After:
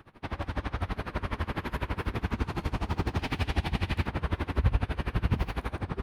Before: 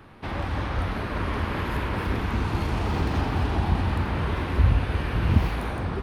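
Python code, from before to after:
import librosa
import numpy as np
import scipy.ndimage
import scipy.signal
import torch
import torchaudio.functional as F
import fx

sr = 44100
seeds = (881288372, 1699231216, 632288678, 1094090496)

y = fx.high_shelf_res(x, sr, hz=1700.0, db=6.0, q=1.5, at=(3.19, 4.07))
y = y * 10.0 ** (-22 * (0.5 - 0.5 * np.cos(2.0 * np.pi * 12.0 * np.arange(len(y)) / sr)) / 20.0)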